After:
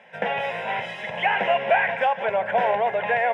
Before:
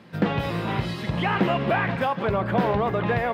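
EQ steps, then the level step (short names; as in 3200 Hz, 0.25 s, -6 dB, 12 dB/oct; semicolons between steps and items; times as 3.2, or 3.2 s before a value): HPF 500 Hz 12 dB/oct; LPF 5100 Hz 12 dB/oct; fixed phaser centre 1200 Hz, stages 6; +6.5 dB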